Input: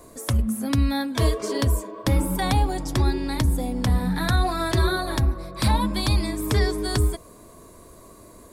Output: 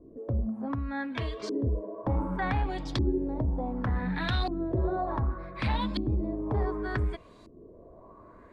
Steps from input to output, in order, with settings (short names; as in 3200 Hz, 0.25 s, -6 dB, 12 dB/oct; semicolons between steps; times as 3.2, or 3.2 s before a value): 0.48–1.64 compressor, threshold -23 dBFS, peak gain reduction 7.5 dB; soft clip -15.5 dBFS, distortion -17 dB; LFO low-pass saw up 0.67 Hz 300–4400 Hz; gain -6 dB